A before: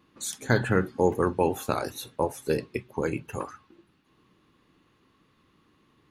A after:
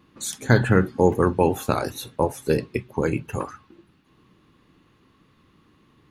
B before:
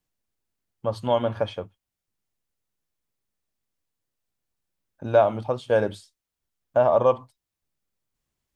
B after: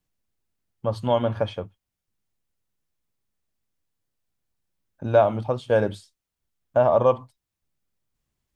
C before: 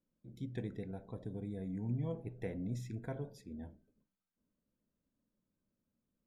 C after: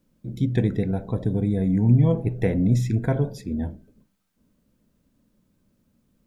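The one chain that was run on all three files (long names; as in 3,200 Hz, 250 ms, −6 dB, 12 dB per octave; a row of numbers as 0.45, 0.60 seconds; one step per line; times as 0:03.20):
bass and treble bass +4 dB, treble −1 dB
loudness normalisation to −23 LKFS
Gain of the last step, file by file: +4.0, +0.5, +16.5 decibels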